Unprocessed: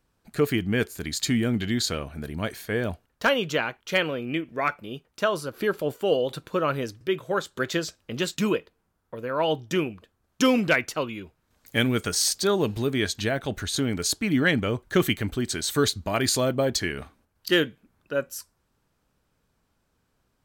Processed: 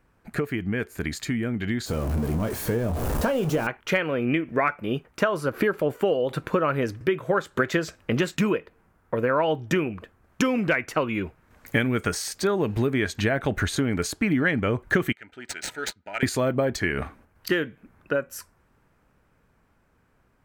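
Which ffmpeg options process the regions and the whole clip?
ffmpeg -i in.wav -filter_complex "[0:a]asettb=1/sr,asplit=3[link_01][link_02][link_03];[link_01]atrim=end=1.864[link_04];[link_02]atrim=start=1.86:end=3.67,asetpts=PTS-STARTPTS,afade=type=in:duration=0.004:curve=qsin,afade=type=out:start_time=1.806:duration=0.004:curve=qsin,aeval=exprs='val(0)+0.5*0.0562*sgn(val(0))':channel_layout=same,equalizer=frequency=2000:width=0.82:gain=-14.5,asplit=2[link_05][link_06];[link_06]adelay=26,volume=-11dB[link_07];[link_05][link_07]amix=inputs=2:normalize=0,atrim=end_sample=79821[link_08];[link_03]atrim=start=3.666[link_09];[link_04][link_08]acrossfade=duration=0.004:curve1=hsin:curve2=qsin[link_10];[link_10][link_09]acrossfade=duration=0.004:curve1=qsin:curve2=hsin,asettb=1/sr,asplit=3[link_11][link_12][link_13];[link_11]atrim=end=15.124[link_14];[link_12]atrim=start=15.12:end=16.23,asetpts=PTS-STARTPTS,afade=type=in:duration=0.004:curve=qsin,afade=type=out:start_time=1.106:duration=0.004:curve=qsin,aderivative,adynamicsmooth=sensitivity=5.5:basefreq=1800,asuperstop=centerf=1100:order=20:qfactor=4.9[link_15];[link_13]atrim=start=16.226[link_16];[link_14][link_15]acrossfade=duration=0.004:curve1=hsin:curve2=qsin[link_17];[link_17][link_16]acrossfade=duration=0.004:curve1=qsin:curve2=hsin,acompressor=threshold=-31dB:ratio=12,highshelf=frequency=2800:width_type=q:width=1.5:gain=-8,dynaudnorm=framelen=460:gausssize=13:maxgain=4dB,volume=7.5dB" out.wav

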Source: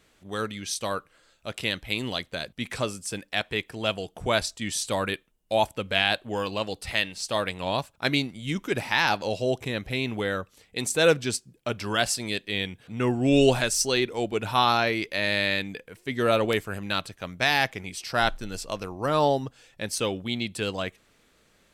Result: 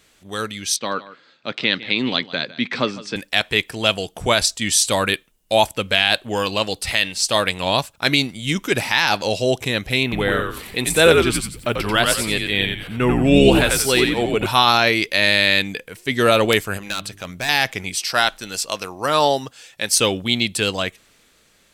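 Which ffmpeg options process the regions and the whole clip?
ffmpeg -i in.wav -filter_complex "[0:a]asettb=1/sr,asplit=3[link_01][link_02][link_03];[link_01]atrim=end=0.764[link_04];[link_02]atrim=start=0.76:end=3.16,asetpts=PTS-STARTPTS,afade=type=in:duration=0.004:curve=qsin,afade=type=out:start_time=2.396:duration=0.004:curve=qsin,highpass=frequency=140:width=0.5412,highpass=frequency=140:width=1.3066,equalizer=frequency=260:width_type=q:width=4:gain=5,equalizer=frequency=650:width_type=q:width=4:gain=-4,equalizer=frequency=2900:width_type=q:width=4:gain=-5,lowpass=frequency=4200:width=0.5412,lowpass=frequency=4200:width=1.3066,aecho=1:1:156:0.133,atrim=end_sample=105840[link_05];[link_03]atrim=start=3.156[link_06];[link_04][link_05]acrossfade=duration=0.004:curve1=hsin:curve2=qsin[link_07];[link_07][link_06]acrossfade=duration=0.004:curve1=qsin:curve2=hsin,asettb=1/sr,asplit=3[link_08][link_09][link_10];[link_08]atrim=end=10.034[link_11];[link_09]atrim=start=10.03:end=14.46,asetpts=PTS-STARTPTS,afade=type=in:duration=0.004:curve=qsin,afade=type=out:start_time=4.426:duration=0.004:curve=qsin,equalizer=frequency=6200:width_type=o:width=1:gain=-14.5,acompressor=mode=upward:threshold=-33dB:ratio=2.5:attack=3.2:release=140:knee=2.83:detection=peak,asplit=5[link_12][link_13][link_14][link_15][link_16];[link_13]adelay=90,afreqshift=-80,volume=-4dB[link_17];[link_14]adelay=180,afreqshift=-160,volume=-13.6dB[link_18];[link_15]adelay=270,afreqshift=-240,volume=-23.3dB[link_19];[link_16]adelay=360,afreqshift=-320,volume=-32.9dB[link_20];[link_12][link_17][link_18][link_19][link_20]amix=inputs=5:normalize=0,atrim=end_sample=195363[link_21];[link_10]atrim=start=14.456[link_22];[link_11][link_21]acrossfade=duration=0.004:curve1=hsin:curve2=qsin[link_23];[link_23][link_22]acrossfade=duration=0.004:curve1=qsin:curve2=hsin,asettb=1/sr,asplit=3[link_24][link_25][link_26];[link_24]atrim=end=16.774[link_27];[link_25]atrim=start=16.77:end=17.49,asetpts=PTS-STARTPTS,afade=type=in:duration=0.004:curve=qsin,afade=type=out:start_time=0.716:duration=0.004:curve=qsin,bandreject=frequency=50:width_type=h:width=6,bandreject=frequency=100:width_type=h:width=6,bandreject=frequency=150:width_type=h:width=6,bandreject=frequency=200:width_type=h:width=6,bandreject=frequency=250:width_type=h:width=6,bandreject=frequency=300:width_type=h:width=6,bandreject=frequency=350:width_type=h:width=6,bandreject=frequency=400:width_type=h:width=6,acompressor=threshold=-38dB:ratio=1.5:attack=3.2:release=140:knee=1:detection=peak,asoftclip=type=hard:threshold=-28.5dB[link_28];[link_26]atrim=start=17.486[link_29];[link_27][link_28]acrossfade=duration=0.004:curve1=hsin:curve2=qsin[link_30];[link_30][link_29]acrossfade=duration=0.004:curve1=qsin:curve2=hsin,asettb=1/sr,asplit=3[link_31][link_32][link_33];[link_31]atrim=end=18.004[link_34];[link_32]atrim=start=18:end=19.93,asetpts=PTS-STARTPTS,afade=type=in:duration=0.004:curve=qsin,afade=type=out:start_time=1.926:duration=0.004:curve=qsin,highpass=frequency=100:poles=1,lowshelf=frequency=440:gain=-7[link_35];[link_33]atrim=start=19.926[link_36];[link_34][link_35]acrossfade=duration=0.004:curve1=hsin:curve2=qsin[link_37];[link_37][link_36]acrossfade=duration=0.004:curve1=qsin:curve2=hsin,dynaudnorm=framelen=160:gausssize=13:maxgain=5dB,highshelf=frequency=2100:gain=7.5,alimiter=level_in=3.5dB:limit=-1dB:release=50:level=0:latency=1,volume=-1dB" out.wav

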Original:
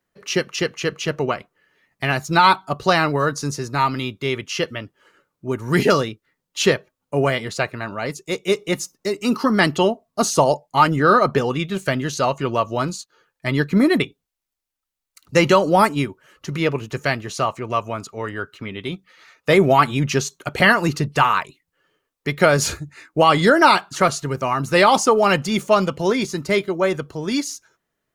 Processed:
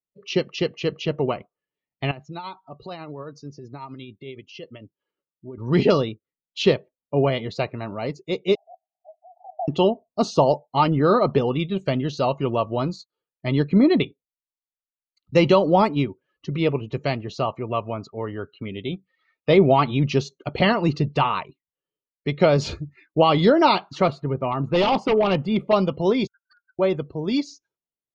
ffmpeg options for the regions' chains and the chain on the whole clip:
ffmpeg -i in.wav -filter_complex "[0:a]asettb=1/sr,asplit=3[link_01][link_02][link_03];[link_01]atrim=end=2.114[link_04];[link_02]atrim=start=2.11:end=5.58,asetpts=PTS-STARTPTS,afade=type=in:duration=0.004:curve=qsin,afade=type=out:start_time=3.466:duration=0.004:curve=qsin,lowshelf=frequency=160:gain=-4,acompressor=threshold=-38dB:ratio=2:attack=3.2:release=140:knee=1:detection=peak,tremolo=f=11:d=0.38[link_05];[link_03]atrim=start=5.576[link_06];[link_04][link_05]acrossfade=duration=0.004:curve1=hsin:curve2=qsin[link_07];[link_07][link_06]acrossfade=duration=0.004:curve1=qsin:curve2=hsin,asettb=1/sr,asplit=3[link_08][link_09][link_10];[link_08]atrim=end=8.554[link_11];[link_09]atrim=start=8.55:end=9.68,asetpts=PTS-STARTPTS,afade=type=in:duration=0.004:curve=qsin,afade=type=out:start_time=1.126:duration=0.004:curve=qsin,asuperpass=centerf=720:order=8:qfactor=4.6,acompressor=mode=upward:threshold=-43dB:ratio=2.5:attack=3.2:release=140:knee=2.83:detection=peak[link_12];[link_10]atrim=start=9.676[link_13];[link_11][link_12]acrossfade=duration=0.004:curve1=hsin:curve2=qsin[link_14];[link_14][link_13]acrossfade=duration=0.004:curve1=qsin:curve2=hsin,asettb=1/sr,asplit=3[link_15][link_16][link_17];[link_15]atrim=end=24.104[link_18];[link_16]atrim=start=24.1:end=25.73,asetpts=PTS-STARTPTS,afade=type=in:duration=0.004:curve=qsin,afade=type=out:start_time=1.626:duration=0.004:curve=qsin,equalizer=frequency=6000:width=1.2:gain=-14.5,aeval=exprs='0.266*(abs(mod(val(0)/0.266+3,4)-2)-1)':channel_layout=same[link_19];[link_17]atrim=start=25.726[link_20];[link_18][link_19]acrossfade=duration=0.004:curve1=hsin:curve2=qsin[link_21];[link_21][link_20]acrossfade=duration=0.004:curve1=qsin:curve2=hsin,asettb=1/sr,asplit=3[link_22][link_23][link_24];[link_22]atrim=end=26.274[link_25];[link_23]atrim=start=26.27:end=26.79,asetpts=PTS-STARTPTS,afade=type=in:duration=0.004:curve=qsin,afade=type=out:start_time=0.516:duration=0.004:curve=qsin,asuperpass=centerf=1500:order=12:qfactor=6.1,aeval=exprs='(mod(79.4*val(0)+1,2)-1)/79.4':channel_layout=same[link_26];[link_24]atrim=start=26.786[link_27];[link_25][link_26]acrossfade=duration=0.004:curve1=hsin:curve2=qsin[link_28];[link_28][link_27]acrossfade=duration=0.004:curve1=qsin:curve2=hsin,afftdn=noise_reduction=23:noise_floor=-41,lowpass=frequency=4300:width=0.5412,lowpass=frequency=4300:width=1.3066,equalizer=frequency=1600:width_type=o:width=0.84:gain=-14" out.wav

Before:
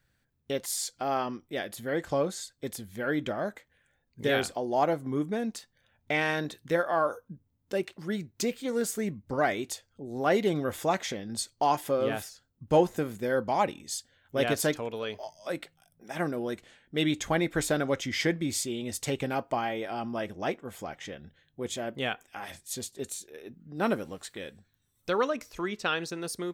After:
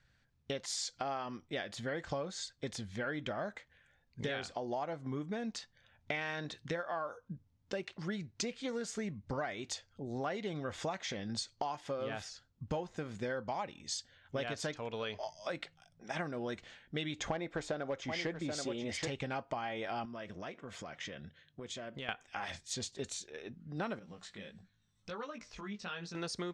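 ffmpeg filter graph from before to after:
ffmpeg -i in.wav -filter_complex "[0:a]asettb=1/sr,asplit=3[link_01][link_02][link_03];[link_01]atrim=end=17.194[link_04];[link_02]atrim=start=17.19:end=19.08,asetpts=PTS-STARTPTS,afade=type=in:duration=0.004:curve=qsin,afade=type=out:start_time=1.886:duration=0.004:curve=qsin,equalizer=frequency=550:width=0.52:gain=9.5,volume=10.5dB,asoftclip=hard,volume=-10.5dB,aecho=1:1:781:0.282,atrim=end_sample=83349[link_05];[link_03]atrim=start=19.076[link_06];[link_04][link_05]acrossfade=duration=0.004:curve1=hsin:curve2=qsin[link_07];[link_07][link_06]acrossfade=duration=0.004:curve1=qsin:curve2=hsin,asettb=1/sr,asplit=3[link_08][link_09][link_10];[link_08]atrim=end=20.054[link_11];[link_09]atrim=start=20.05:end=22.09,asetpts=PTS-STARTPTS,afade=type=in:duration=0.004:curve=qsin,afade=type=out:start_time=2.036:duration=0.004:curve=qsin,highpass=100,acompressor=threshold=-40dB:ratio=6:attack=3.2:release=140:knee=1:detection=peak,bandreject=frequency=810:width=6.5[link_12];[link_10]atrim=start=22.086[link_13];[link_11][link_12]acrossfade=duration=0.004:curve1=hsin:curve2=qsin[link_14];[link_14][link_13]acrossfade=duration=0.004:curve1=qsin:curve2=hsin,asettb=1/sr,asplit=3[link_15][link_16][link_17];[link_15]atrim=end=23.994[link_18];[link_16]atrim=start=23.99:end=26.15,asetpts=PTS-STARTPTS,afade=type=in:duration=0.004:curve=qsin,afade=type=out:start_time=2.156:duration=0.004:curve=qsin,equalizer=frequency=190:width_type=o:width=0.31:gain=12,acompressor=threshold=-46dB:ratio=2:attack=3.2:release=140:knee=1:detection=peak,flanger=delay=17:depth=2.8:speed=1.5[link_19];[link_17]atrim=start=26.146[link_20];[link_18][link_19]acrossfade=duration=0.004:curve1=hsin:curve2=qsin[link_21];[link_21][link_20]acrossfade=duration=0.004:curve1=qsin:curve2=hsin,lowpass=frequency=6500:width=0.5412,lowpass=frequency=6500:width=1.3066,equalizer=frequency=340:width_type=o:width=1.4:gain=-6,acompressor=threshold=-37dB:ratio=10,volume=2.5dB" out.wav

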